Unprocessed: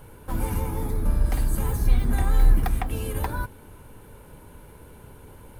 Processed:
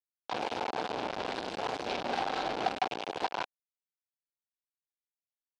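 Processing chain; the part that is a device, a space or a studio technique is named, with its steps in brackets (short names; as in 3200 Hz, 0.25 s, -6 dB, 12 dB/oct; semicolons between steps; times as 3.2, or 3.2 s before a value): hand-held game console (bit-crush 4-bit; speaker cabinet 410–4600 Hz, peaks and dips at 760 Hz +7 dB, 1200 Hz -4 dB, 1900 Hz -6 dB); gain -4 dB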